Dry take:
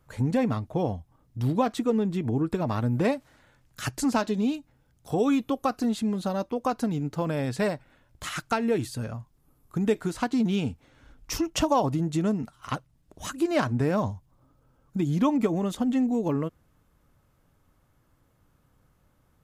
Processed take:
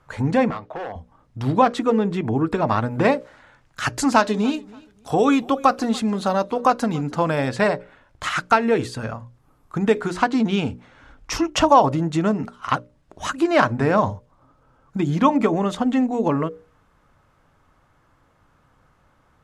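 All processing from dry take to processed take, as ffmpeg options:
-filter_complex "[0:a]asettb=1/sr,asplit=3[s0][s1][s2];[s0]atrim=end=0.504[s3];[s1]atrim=start=0.5:end=0.96,asetpts=PTS-STARTPTS,afade=t=in:d=0.004:c=qsin,afade=t=out:st=0.456:d=0.004:c=qsin,acrossover=split=340 4600:gain=0.2 1 0.2[s4][s5][s6];[s4][s5][s6]amix=inputs=3:normalize=0,asoftclip=type=hard:threshold=0.0355,acompressor=threshold=0.0158:ratio=5:attack=3.2:release=140:knee=1:detection=peak[s7];[s2]atrim=start=0.956[s8];[s3][s7]acrossfade=d=0.004:c1=hsin:c2=qsin[s9];[s9][s8]acrossfade=d=0.004:c1=qsin:c2=hsin,asettb=1/sr,asplit=3[s10][s11][s12];[s10]atrim=end=3.964[s13];[s11]atrim=start=3.96:end=7.49,asetpts=PTS-STARTPTS,afade=t=in:d=0.004:c=qsin,afade=t=out:st=3.526:d=0.004:c=qsin,highshelf=f=5700:g=7,aecho=1:1:288|576:0.0708|0.0177,atrim=end_sample=155673[s14];[s12]atrim=start=7.486[s15];[s13][s14]acrossfade=d=0.004:c1=hsin:c2=qsin[s16];[s16][s15]acrossfade=d=0.004:c1=qsin:c2=hsin,lowpass=8200,equalizer=f=1200:w=0.49:g=8.5,bandreject=f=60:t=h:w=6,bandreject=f=120:t=h:w=6,bandreject=f=180:t=h:w=6,bandreject=f=240:t=h:w=6,bandreject=f=300:t=h:w=6,bandreject=f=360:t=h:w=6,bandreject=f=420:t=h:w=6,bandreject=f=480:t=h:w=6,bandreject=f=540:t=h:w=6,bandreject=f=600:t=h:w=6,volume=1.5"

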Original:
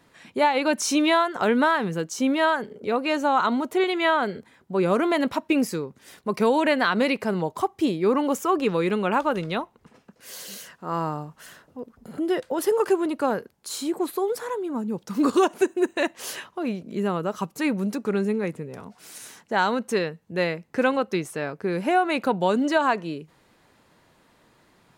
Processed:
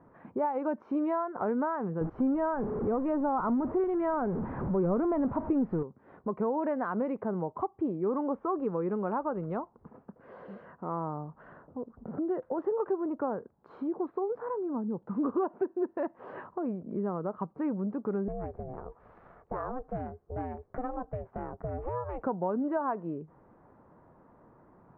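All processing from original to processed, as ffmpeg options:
-filter_complex "[0:a]asettb=1/sr,asplit=3[s0][s1][s2];[s0]atrim=end=2.014[s3];[s1]atrim=start=2.01:end=5.83,asetpts=PTS-STARTPTS,afade=t=in:d=0.004:c=qsin,afade=t=out:st=3.816:d=0.004:c=qsin,aeval=exprs='val(0)+0.5*0.0473*sgn(val(0))':c=same,lowpass=f=3100:p=1,lowshelf=f=210:g=10.5[s4];[s2]atrim=start=5.826[s5];[s3][s4]acrossfade=d=0.004:c1=hsin:c2=qsin[s6];[s6][s5]acrossfade=d=0.004:c1=qsin:c2=hsin,asettb=1/sr,asplit=3[s7][s8][s9];[s7]atrim=end=18.284[s10];[s8]atrim=start=18.28:end=22.23,asetpts=PTS-STARTPTS,afade=t=in:d=0.004:c=qsin,afade=t=out:st=3.946:d=0.004:c=qsin,acompressor=threshold=0.0282:ratio=1.5:attack=3.2:release=140:knee=1:detection=peak,aeval=exprs='val(0)*sin(2*PI*250*n/s)':c=same[s11];[s9]atrim=start=22.226[s12];[s10][s11]acrossfade=d=0.004:c1=hsin:c2=qsin[s13];[s13][s12]acrossfade=d=0.004:c1=qsin:c2=hsin,lowpass=f=1200:w=0.5412,lowpass=f=1200:w=1.3066,acompressor=threshold=0.0112:ratio=2,volume=1.33"

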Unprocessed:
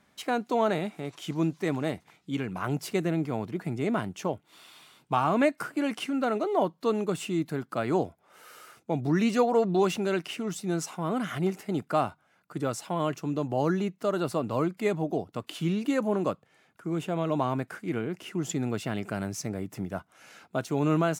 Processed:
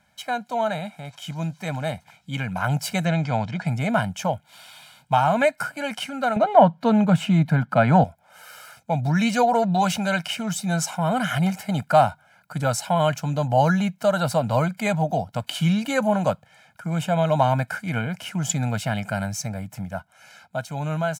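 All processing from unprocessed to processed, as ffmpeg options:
-filter_complex "[0:a]asettb=1/sr,asplit=3[s0][s1][s2];[s0]atrim=end=3.054[s3];[s1]atrim=start=3.05:end=3.67,asetpts=PTS-STARTPTS,afade=t=in:d=0.004:c=qsin,afade=t=out:st=0.616:d=0.004:c=qsin,lowpass=f=6800:w=0.5412,lowpass=f=6800:w=1.3066,equalizer=f=4300:t=o:w=2.7:g=4[s4];[s2]atrim=start=3.666[s5];[s3][s4]acrossfade=d=0.004:c1=hsin:c2=qsin[s6];[s6][s5]acrossfade=d=0.004:c1=qsin:c2=hsin,asettb=1/sr,asplit=3[s7][s8][s9];[s7]atrim=end=6.364[s10];[s8]atrim=start=6.36:end=8.04,asetpts=PTS-STARTPTS,afade=t=in:d=0.004:c=qsin,afade=t=out:st=1.676:d=0.004:c=qsin,bass=f=250:g=10,treble=f=4000:g=-14,acontrast=62,highpass=170[s11];[s9]atrim=start=8.036[s12];[s10][s11]acrossfade=d=0.004:c1=hsin:c2=qsin[s13];[s13][s12]acrossfade=d=0.004:c1=qsin:c2=hsin,equalizer=f=320:t=o:w=0.71:g=-10.5,aecho=1:1:1.3:0.83,dynaudnorm=f=210:g=21:m=2.51"

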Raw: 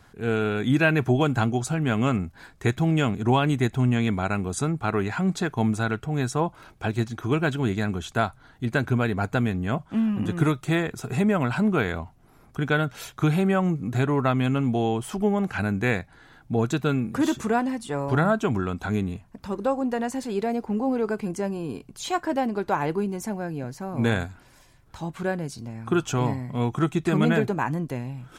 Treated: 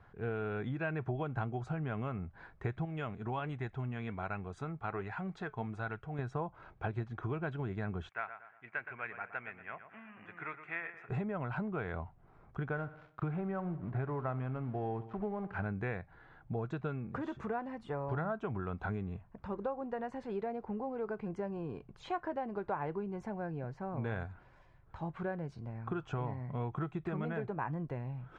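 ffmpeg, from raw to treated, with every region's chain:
-filter_complex "[0:a]asettb=1/sr,asplit=3[s0][s1][s2];[s0]atrim=end=2.854[s3];[s1]atrim=start=2.85:end=6.19,asetpts=PTS-STARTPTS,afade=t=in:d=0.004:c=qsin,afade=t=out:st=3.336:d=0.004:c=qsin,tiltshelf=f=1300:g=-3,flanger=delay=1.1:depth=3.6:regen=76:speed=1.3:shape=sinusoidal[s4];[s2]atrim=start=6.186[s5];[s3][s4]acrossfade=d=0.004:c1=hsin:c2=qsin[s6];[s6][s5]acrossfade=d=0.004:c1=qsin:c2=hsin,asettb=1/sr,asplit=3[s7][s8][s9];[s7]atrim=end=8.094[s10];[s8]atrim=start=8.09:end=11.09,asetpts=PTS-STARTPTS,afade=t=in:d=0.004:c=qsin,afade=t=out:st=2.996:d=0.004:c=qsin,bandpass=f=4000:t=q:w=0.81,highshelf=f=3000:t=q:w=3:g=-10,asplit=2[s11][s12];[s12]adelay=118,lowpass=f=3200:p=1,volume=0.299,asplit=2[s13][s14];[s14]adelay=118,lowpass=f=3200:p=1,volume=0.42,asplit=2[s15][s16];[s16]adelay=118,lowpass=f=3200:p=1,volume=0.42,asplit=2[s17][s18];[s18]adelay=118,lowpass=f=3200:p=1,volume=0.42[s19];[s11][s13][s15][s17][s19]amix=inputs=5:normalize=0,atrim=end_sample=132300[s20];[s9]atrim=start=11.086[s21];[s10][s20]acrossfade=d=0.004:c1=hsin:c2=qsin[s22];[s22][s21]acrossfade=d=0.004:c1=qsin:c2=hsin,asettb=1/sr,asplit=3[s23][s24][s25];[s23]atrim=end=12.694[s26];[s24]atrim=start=12.69:end=15.66,asetpts=PTS-STARTPTS,afade=t=in:d=0.004:c=qsin,afade=t=out:st=2.966:d=0.004:c=qsin,lowpass=2100,aeval=exprs='sgn(val(0))*max(abs(val(0))-0.00708,0)':c=same,aecho=1:1:62|124|186|248|310:0.141|0.0749|0.0397|0.021|0.0111,atrim=end_sample=130977[s27];[s25]atrim=start=15.656[s28];[s26][s27]acrossfade=d=0.004:c1=hsin:c2=qsin[s29];[s29][s28]acrossfade=d=0.004:c1=qsin:c2=hsin,lowpass=1700,acompressor=threshold=0.0447:ratio=5,equalizer=f=260:t=o:w=0.71:g=-8,volume=0.596"

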